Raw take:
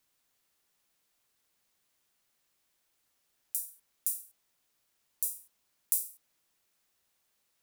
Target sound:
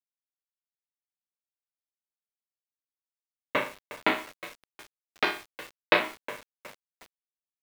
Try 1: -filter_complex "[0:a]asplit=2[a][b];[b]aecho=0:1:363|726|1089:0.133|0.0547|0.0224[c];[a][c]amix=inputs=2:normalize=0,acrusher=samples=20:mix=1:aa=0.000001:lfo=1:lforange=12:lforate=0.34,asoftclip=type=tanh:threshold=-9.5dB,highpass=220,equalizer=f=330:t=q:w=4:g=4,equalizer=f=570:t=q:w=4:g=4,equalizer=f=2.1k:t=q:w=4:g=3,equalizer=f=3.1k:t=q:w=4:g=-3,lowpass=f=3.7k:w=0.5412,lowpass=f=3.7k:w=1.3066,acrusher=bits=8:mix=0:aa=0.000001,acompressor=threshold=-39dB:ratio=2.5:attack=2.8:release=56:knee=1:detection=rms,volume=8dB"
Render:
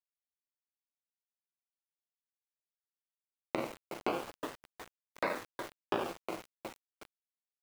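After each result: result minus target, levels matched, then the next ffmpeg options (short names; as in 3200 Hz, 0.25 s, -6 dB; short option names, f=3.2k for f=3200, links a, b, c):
compressor: peak gain reduction +13 dB; decimation with a swept rate: distortion +10 dB
-filter_complex "[0:a]asplit=2[a][b];[b]aecho=0:1:363|726|1089:0.133|0.0547|0.0224[c];[a][c]amix=inputs=2:normalize=0,acrusher=samples=20:mix=1:aa=0.000001:lfo=1:lforange=12:lforate=0.34,asoftclip=type=tanh:threshold=-9.5dB,highpass=220,equalizer=f=330:t=q:w=4:g=4,equalizer=f=570:t=q:w=4:g=4,equalizer=f=2.1k:t=q:w=4:g=3,equalizer=f=3.1k:t=q:w=4:g=-3,lowpass=f=3.7k:w=0.5412,lowpass=f=3.7k:w=1.3066,acrusher=bits=8:mix=0:aa=0.000001,volume=8dB"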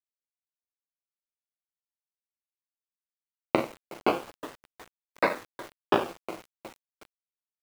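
decimation with a swept rate: distortion +10 dB
-filter_complex "[0:a]asplit=2[a][b];[b]aecho=0:1:363|726|1089:0.133|0.0547|0.0224[c];[a][c]amix=inputs=2:normalize=0,acrusher=samples=7:mix=1:aa=0.000001:lfo=1:lforange=4.2:lforate=0.34,asoftclip=type=tanh:threshold=-9.5dB,highpass=220,equalizer=f=330:t=q:w=4:g=4,equalizer=f=570:t=q:w=4:g=4,equalizer=f=2.1k:t=q:w=4:g=3,equalizer=f=3.1k:t=q:w=4:g=-3,lowpass=f=3.7k:w=0.5412,lowpass=f=3.7k:w=1.3066,acrusher=bits=8:mix=0:aa=0.000001,volume=8dB"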